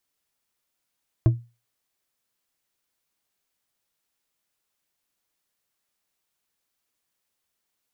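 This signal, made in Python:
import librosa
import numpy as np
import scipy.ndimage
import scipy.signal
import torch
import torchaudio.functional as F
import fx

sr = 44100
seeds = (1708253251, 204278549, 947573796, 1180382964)

y = fx.strike_glass(sr, length_s=0.89, level_db=-10.0, body='bar', hz=118.0, decay_s=0.29, tilt_db=9, modes=5)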